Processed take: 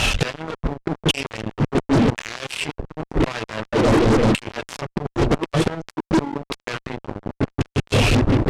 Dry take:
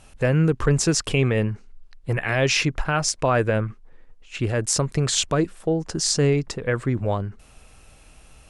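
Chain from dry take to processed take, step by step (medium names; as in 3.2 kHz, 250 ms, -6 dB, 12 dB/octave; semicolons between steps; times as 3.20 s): tone controls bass -3 dB, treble +9 dB; on a send: filtered feedback delay 178 ms, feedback 77%, low-pass 1.2 kHz, level -11 dB; on the sum: one-sided clip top -14.5 dBFS, bottom -1 dBFS; chorus voices 2, 0.33 Hz, delay 27 ms, depth 2.4 ms; reverb removal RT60 0.81 s; dynamic bell 1 kHz, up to +6 dB, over -51 dBFS, Q 6.4; LFO low-pass square 0.92 Hz 310–3100 Hz; reverse; compression 8:1, threshold -30 dBFS, peak gain reduction 13.5 dB; reverse; inverted gate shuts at -30 dBFS, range -29 dB; fuzz box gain 57 dB, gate -59 dBFS; low-pass 8.9 kHz 12 dB/octave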